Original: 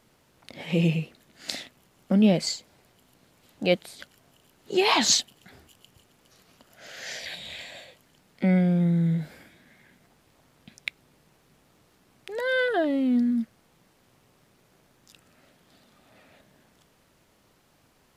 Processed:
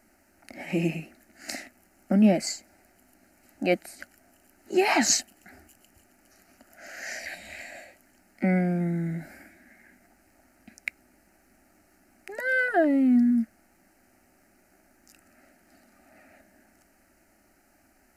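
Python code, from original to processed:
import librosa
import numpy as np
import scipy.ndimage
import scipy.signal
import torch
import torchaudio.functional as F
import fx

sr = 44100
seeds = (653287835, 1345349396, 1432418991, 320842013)

y = fx.fixed_phaser(x, sr, hz=700.0, stages=8)
y = y * 10.0 ** (3.5 / 20.0)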